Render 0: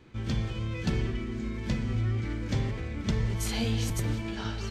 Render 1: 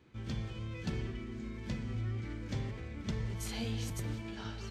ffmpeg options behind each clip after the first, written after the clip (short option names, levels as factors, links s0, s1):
-af "highpass=42,volume=0.398"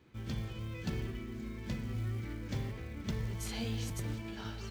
-af "acrusher=bits=7:mode=log:mix=0:aa=0.000001"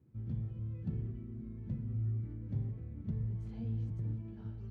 -af "bandpass=f=120:t=q:w=1.2:csg=0,volume=1.33"